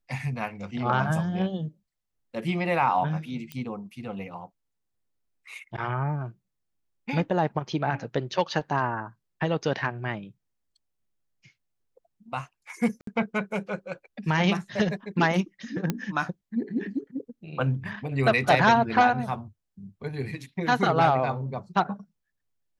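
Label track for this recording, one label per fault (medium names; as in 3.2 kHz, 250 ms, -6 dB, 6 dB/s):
3.520000	3.520000	pop -21 dBFS
13.010000	13.070000	dropout 63 ms
15.900000	15.900000	pop -12 dBFS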